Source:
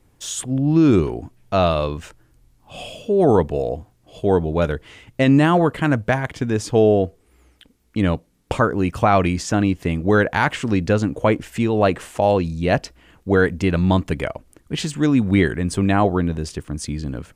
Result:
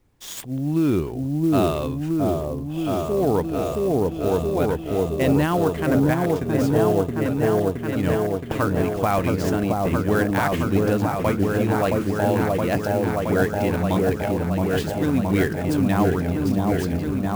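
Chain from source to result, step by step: delay with an opening low-pass 670 ms, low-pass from 750 Hz, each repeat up 1 oct, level 0 dB; sampling jitter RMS 0.021 ms; trim -6 dB

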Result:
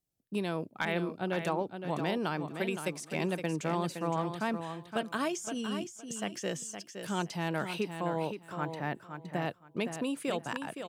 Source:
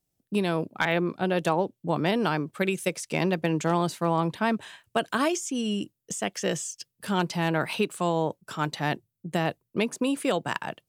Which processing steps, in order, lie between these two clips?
7.82–9.42 s: high-order bell 6.1 kHz -9.5 dB 2.4 oct; feedback delay 516 ms, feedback 19%, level -8 dB; trim -7.5 dB

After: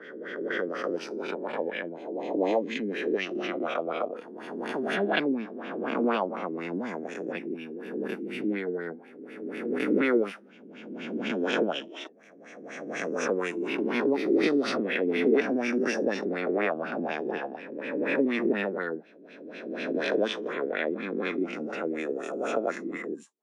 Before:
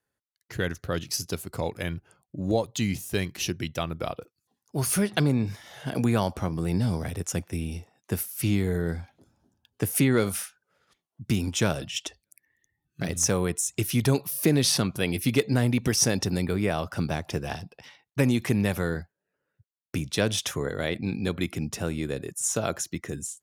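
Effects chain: reverse spectral sustain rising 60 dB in 1.91 s; LFO low-pass sine 4.1 Hz 330–2700 Hz; steep high-pass 220 Hz 36 dB/octave; trim -5.5 dB

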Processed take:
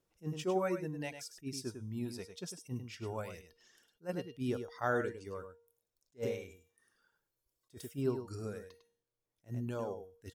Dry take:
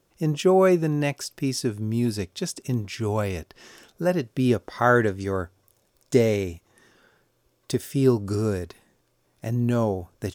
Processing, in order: reverb removal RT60 1.8 s; 6.50–7.71 s: treble shelf 4.7 kHz +9.5 dB; feedback comb 470 Hz, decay 0.53 s, mix 70%; delay 102 ms -9 dB; attacks held to a fixed rise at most 400 dB/s; trim -3.5 dB

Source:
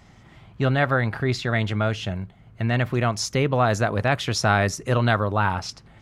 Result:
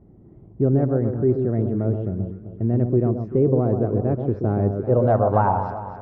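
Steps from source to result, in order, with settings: echo whose repeats swap between lows and highs 129 ms, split 1.2 kHz, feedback 65%, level -6 dB; low-pass sweep 380 Hz -> 770 Hz, 4.75–5.33 s

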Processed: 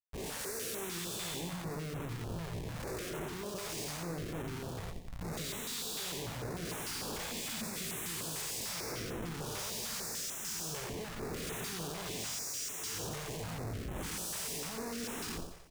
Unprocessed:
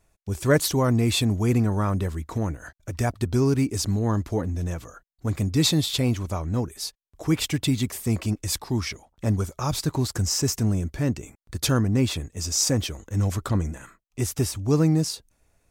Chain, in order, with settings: spectral blur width 406 ms; formant-preserving pitch shift +7 st; peaking EQ 430 Hz +13.5 dB 0.74 oct; in parallel at 0 dB: compression 8:1, threshold -30 dBFS, peak gain reduction 13.5 dB; on the sum: pre-emphasis filter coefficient 0.97; Schmitt trigger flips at -43.5 dBFS; doubling 18 ms -10.5 dB; feedback delay 89 ms, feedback 52%, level -7.5 dB; step-sequenced notch 6.7 Hz 260–4700 Hz

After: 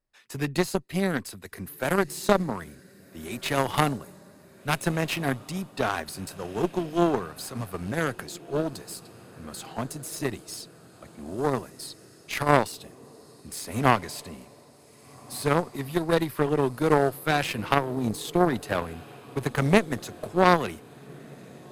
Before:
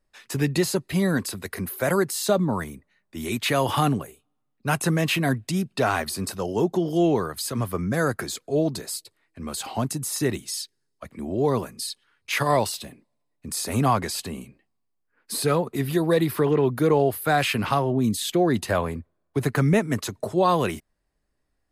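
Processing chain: echo that smears into a reverb 1590 ms, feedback 59%, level -16 dB; Chebyshev shaper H 2 -14 dB, 3 -12 dB, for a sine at -8 dBFS; trim +3.5 dB

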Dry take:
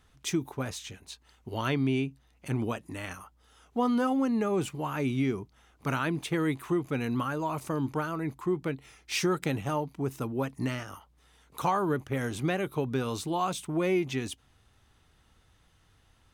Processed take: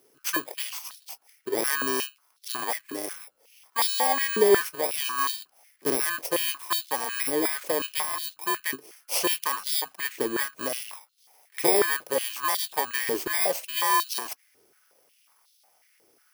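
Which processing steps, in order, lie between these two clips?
bit-reversed sample order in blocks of 32 samples; step-sequenced high-pass 5.5 Hz 390–3800 Hz; trim +4 dB

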